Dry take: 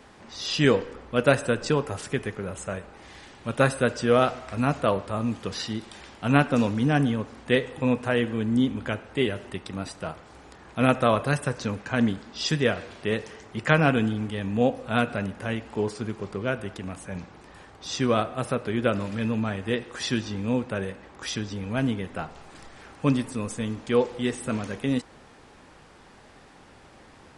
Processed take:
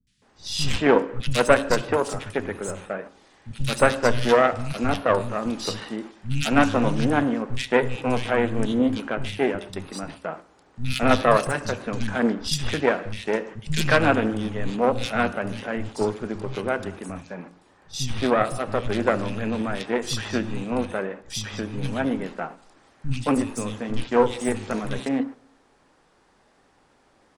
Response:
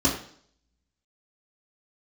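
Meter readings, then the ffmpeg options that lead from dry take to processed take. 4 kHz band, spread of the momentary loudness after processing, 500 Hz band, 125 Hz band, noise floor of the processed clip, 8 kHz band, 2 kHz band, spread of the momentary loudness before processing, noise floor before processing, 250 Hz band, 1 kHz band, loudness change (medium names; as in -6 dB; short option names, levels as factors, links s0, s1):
+2.5 dB, 14 LU, +3.0 dB, -1.0 dB, -61 dBFS, +4.0 dB, +2.5 dB, 14 LU, -52 dBFS, +0.5 dB, +4.5 dB, +2.0 dB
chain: -filter_complex "[0:a]agate=range=0.282:threshold=0.0112:ratio=16:detection=peak,equalizer=f=72:t=o:w=1.2:g=-8,aeval=exprs='0.794*(cos(1*acos(clip(val(0)/0.794,-1,1)))-cos(1*PI/2))+0.126*(cos(8*acos(clip(val(0)/0.794,-1,1)))-cos(8*PI/2))':c=same,acrossover=split=170|2600[s0][s1][s2];[s2]adelay=70[s3];[s1]adelay=220[s4];[s0][s4][s3]amix=inputs=3:normalize=0,asplit=2[s5][s6];[1:a]atrim=start_sample=2205,adelay=65[s7];[s6][s7]afir=irnorm=-1:irlink=0,volume=0.0188[s8];[s5][s8]amix=inputs=2:normalize=0,volume=1.41"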